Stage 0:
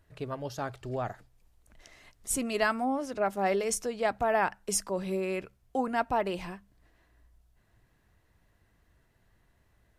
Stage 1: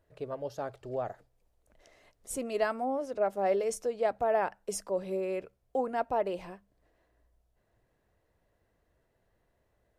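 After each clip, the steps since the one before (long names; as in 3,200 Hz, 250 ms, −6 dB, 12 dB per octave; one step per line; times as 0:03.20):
parametric band 530 Hz +11.5 dB 1.2 octaves
level −8.5 dB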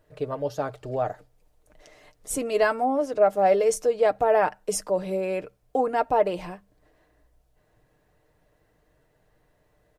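comb filter 6.6 ms, depth 45%
level +7.5 dB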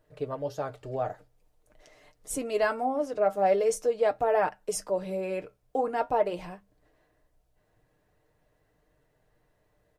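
flanger 0.45 Hz, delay 6.4 ms, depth 4.5 ms, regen −66%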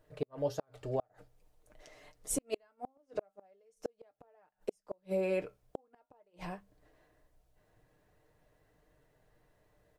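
gate with flip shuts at −22 dBFS, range −41 dB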